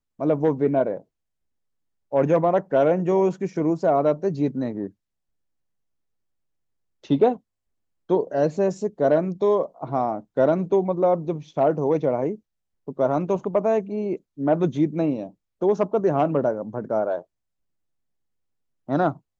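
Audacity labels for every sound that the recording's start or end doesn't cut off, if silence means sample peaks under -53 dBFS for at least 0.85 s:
2.120000	4.920000	sound
7.040000	17.240000	sound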